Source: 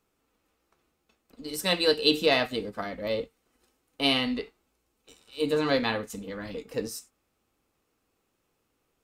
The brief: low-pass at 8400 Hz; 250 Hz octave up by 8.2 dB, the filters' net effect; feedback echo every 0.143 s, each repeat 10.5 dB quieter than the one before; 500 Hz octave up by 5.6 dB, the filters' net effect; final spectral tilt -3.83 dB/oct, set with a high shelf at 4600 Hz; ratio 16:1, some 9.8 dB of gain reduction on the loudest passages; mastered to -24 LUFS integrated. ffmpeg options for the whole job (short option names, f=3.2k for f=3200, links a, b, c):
-af "lowpass=8.4k,equalizer=f=250:t=o:g=8.5,equalizer=f=500:t=o:g=4,highshelf=f=4.6k:g=9,acompressor=threshold=-21dB:ratio=16,aecho=1:1:143|286|429:0.299|0.0896|0.0269,volume=3.5dB"